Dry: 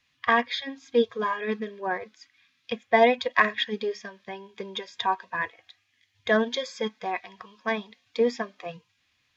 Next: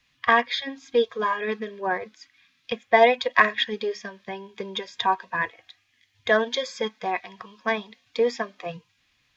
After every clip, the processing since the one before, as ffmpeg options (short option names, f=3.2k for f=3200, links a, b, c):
-filter_complex "[0:a]equalizer=f=84:w=2.2:g=-10,acrossover=split=380[a][b];[a]acompressor=threshold=-39dB:ratio=6[c];[c][b]amix=inputs=2:normalize=0,lowshelf=f=110:g=11,volume=3dB"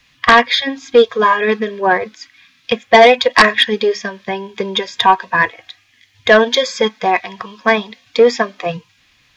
-af "aeval=exprs='0.891*sin(PI/2*2.82*val(0)/0.891)':c=same"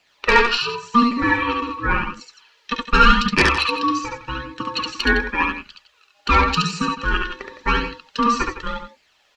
-filter_complex "[0:a]aeval=exprs='val(0)*sin(2*PI*710*n/s)':c=same,asplit=2[a][b];[b]aecho=0:1:69.97|160.3:0.708|0.251[c];[a][c]amix=inputs=2:normalize=0,flanger=delay=0.4:depth=2.4:regen=38:speed=0.89:shape=sinusoidal,volume=-1dB"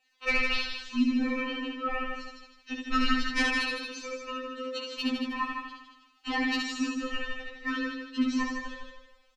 -filter_complex "[0:a]asplit=2[a][b];[b]aecho=0:1:157|314|471|628:0.531|0.181|0.0614|0.0209[c];[a][c]amix=inputs=2:normalize=0,afftfilt=real='re*3.46*eq(mod(b,12),0)':imag='im*3.46*eq(mod(b,12),0)':win_size=2048:overlap=0.75,volume=-8.5dB"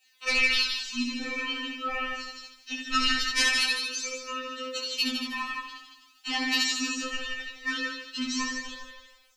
-af "flanger=delay=15.5:depth=3.9:speed=0.22,crystalizer=i=9:c=0,volume=-3dB"